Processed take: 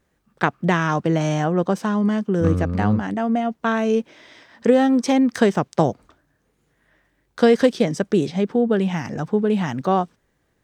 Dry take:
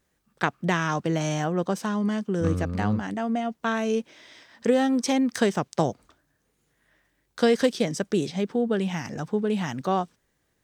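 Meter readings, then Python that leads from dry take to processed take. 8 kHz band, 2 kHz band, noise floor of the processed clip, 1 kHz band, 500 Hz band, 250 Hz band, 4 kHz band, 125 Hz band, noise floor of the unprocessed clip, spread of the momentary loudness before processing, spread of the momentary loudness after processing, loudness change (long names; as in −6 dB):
−1.0 dB, +4.0 dB, −68 dBFS, +5.5 dB, +6.0 dB, +6.0 dB, +1.0 dB, +6.0 dB, −73 dBFS, 6 LU, 6 LU, +5.5 dB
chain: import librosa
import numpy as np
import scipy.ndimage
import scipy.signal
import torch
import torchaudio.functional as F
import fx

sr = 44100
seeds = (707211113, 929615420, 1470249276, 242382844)

y = fx.high_shelf(x, sr, hz=3000.0, db=-8.5)
y = y * librosa.db_to_amplitude(6.0)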